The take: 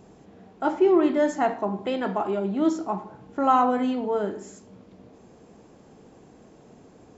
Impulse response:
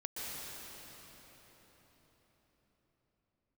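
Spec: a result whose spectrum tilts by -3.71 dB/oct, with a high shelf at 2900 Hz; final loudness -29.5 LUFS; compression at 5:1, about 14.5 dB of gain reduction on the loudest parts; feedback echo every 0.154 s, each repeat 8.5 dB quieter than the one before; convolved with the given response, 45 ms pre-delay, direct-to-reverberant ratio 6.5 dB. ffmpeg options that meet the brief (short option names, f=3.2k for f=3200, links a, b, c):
-filter_complex "[0:a]highshelf=f=2.9k:g=-4,acompressor=threshold=-32dB:ratio=5,aecho=1:1:154|308|462|616:0.376|0.143|0.0543|0.0206,asplit=2[a][b];[1:a]atrim=start_sample=2205,adelay=45[c];[b][c]afir=irnorm=-1:irlink=0,volume=-8.5dB[d];[a][d]amix=inputs=2:normalize=0,volume=5.5dB"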